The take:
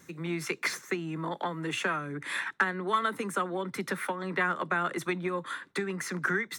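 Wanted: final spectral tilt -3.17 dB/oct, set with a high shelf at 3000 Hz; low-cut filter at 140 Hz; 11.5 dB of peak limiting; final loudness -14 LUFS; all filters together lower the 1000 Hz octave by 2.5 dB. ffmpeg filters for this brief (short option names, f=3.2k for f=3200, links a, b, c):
-af "highpass=140,equalizer=f=1k:t=o:g=-4.5,highshelf=f=3k:g=7,volume=19.5dB,alimiter=limit=-2.5dB:level=0:latency=1"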